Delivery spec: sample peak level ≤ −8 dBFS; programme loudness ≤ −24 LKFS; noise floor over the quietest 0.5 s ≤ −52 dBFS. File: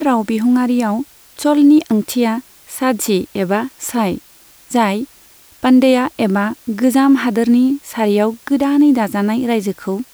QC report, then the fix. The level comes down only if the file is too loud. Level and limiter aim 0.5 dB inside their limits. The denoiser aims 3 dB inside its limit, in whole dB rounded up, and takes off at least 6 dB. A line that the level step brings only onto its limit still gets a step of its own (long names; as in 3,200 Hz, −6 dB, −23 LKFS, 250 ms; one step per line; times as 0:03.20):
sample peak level −3.0 dBFS: out of spec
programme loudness −15.5 LKFS: out of spec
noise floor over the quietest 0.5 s −46 dBFS: out of spec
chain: level −9 dB